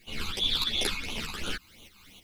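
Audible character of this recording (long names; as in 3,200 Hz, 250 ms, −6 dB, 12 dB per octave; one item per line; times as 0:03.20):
a quantiser's noise floor 10 bits, dither triangular
phaser sweep stages 12, 2.9 Hz, lowest notch 550–1,700 Hz
tremolo saw up 3.2 Hz, depth 65%
a shimmering, thickened sound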